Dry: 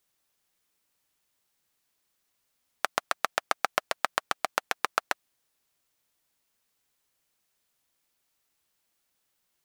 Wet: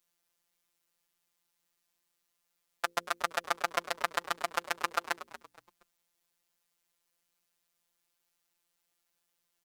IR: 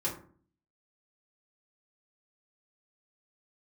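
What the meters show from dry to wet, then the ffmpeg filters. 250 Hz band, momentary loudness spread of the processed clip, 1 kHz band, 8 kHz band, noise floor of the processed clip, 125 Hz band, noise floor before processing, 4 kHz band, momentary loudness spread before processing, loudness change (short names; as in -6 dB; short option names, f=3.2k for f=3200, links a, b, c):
-2.5 dB, 6 LU, -3.0 dB, -3.0 dB, -81 dBFS, -2.0 dB, -77 dBFS, -3.0 dB, 4 LU, -3.0 dB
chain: -filter_complex "[0:a]bandreject=f=60:t=h:w=6,bandreject=f=120:t=h:w=6,bandreject=f=180:t=h:w=6,bandreject=f=240:t=h:w=6,bandreject=f=300:t=h:w=6,bandreject=f=360:t=h:w=6,bandreject=f=420:t=h:w=6,bandreject=f=480:t=h:w=6,afftfilt=real='hypot(re,im)*cos(PI*b)':imag='0':win_size=1024:overlap=0.75,asplit=4[a][b][c][d];[b]adelay=235,afreqshift=-110,volume=-14.5dB[e];[c]adelay=470,afreqshift=-220,volume=-24.7dB[f];[d]adelay=705,afreqshift=-330,volume=-34.8dB[g];[a][e][f][g]amix=inputs=4:normalize=0"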